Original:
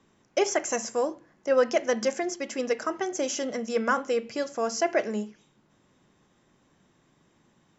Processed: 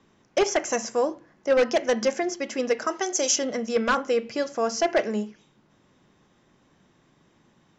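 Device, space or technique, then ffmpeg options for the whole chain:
synthesiser wavefolder: -filter_complex "[0:a]aeval=exprs='0.15*(abs(mod(val(0)/0.15+3,4)-2)-1)':c=same,lowpass=f=6.7k:w=0.5412,lowpass=f=6.7k:w=1.3066,asettb=1/sr,asplit=3[a][b][c];[a]atrim=end=2.874[d];[b]atrim=start=2.87:end=3.36,asetpts=PTS-STARTPTS,afade=t=in:d=0.004:c=qsin,afade=t=out:st=0.486:d=0.004:c=qsin,bass=f=250:g=-12,treble=f=4k:g=12[e];[c]atrim=start=3.356[f];[d][e]acrossfade=d=0.004:c1=hsin:c2=qsin[g];[g][f]acrossfade=d=0.004:c1=qsin:c2=hsin,volume=3dB"

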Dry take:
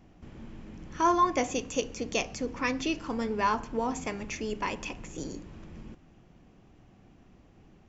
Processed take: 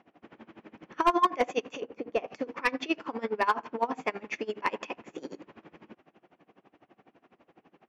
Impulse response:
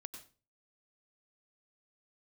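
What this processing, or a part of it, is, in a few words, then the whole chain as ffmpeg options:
helicopter radio: -filter_complex "[0:a]highpass=380,lowpass=2.6k,aeval=exprs='val(0)*pow(10,-23*(0.5-0.5*cos(2*PI*12*n/s))/20)':c=same,asoftclip=type=hard:threshold=-24dB,asettb=1/sr,asplit=3[a][b][c];[a]atrim=end=1.804[d];[b]atrim=start=1.8:end=2.28,asetpts=PTS-STARTPTS,afade=t=in:d=0.004:c=qsin,afade=t=out:st=0.476:d=0.004:c=qsin,lowpass=f=1k:p=1[e];[c]atrim=start=2.276[f];[d][e]acrossfade=d=0.004:c1=hsin:c2=qsin[g];[g][f]acrossfade=d=0.004:c1=qsin:c2=hsin,volume=9dB"

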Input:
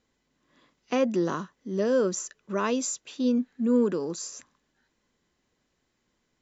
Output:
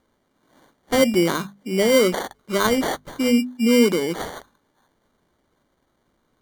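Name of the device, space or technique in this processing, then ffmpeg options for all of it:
crushed at another speed: -af "asetrate=22050,aresample=44100,acrusher=samples=34:mix=1:aa=0.000001,asetrate=88200,aresample=44100,bandreject=f=50:t=h:w=6,bandreject=f=100:t=h:w=6,bandreject=f=150:t=h:w=6,bandreject=f=200:t=h:w=6,bandreject=f=250:t=h:w=6,volume=7.5dB"

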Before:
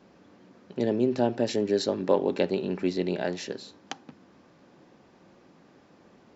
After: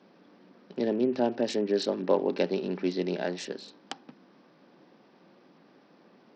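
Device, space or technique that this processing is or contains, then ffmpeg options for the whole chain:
Bluetooth headset: -af "highpass=f=160:w=0.5412,highpass=f=160:w=1.3066,aresample=16000,aresample=44100,volume=-1.5dB" -ar 44100 -c:a sbc -b:a 64k

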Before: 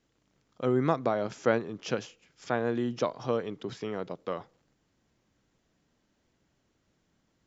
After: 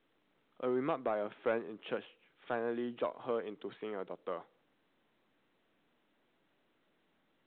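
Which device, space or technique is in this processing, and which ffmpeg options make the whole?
telephone: -af "highpass=270,lowpass=3.4k,asoftclip=type=tanh:threshold=-18.5dB,volume=-4.5dB" -ar 8000 -c:a pcm_mulaw

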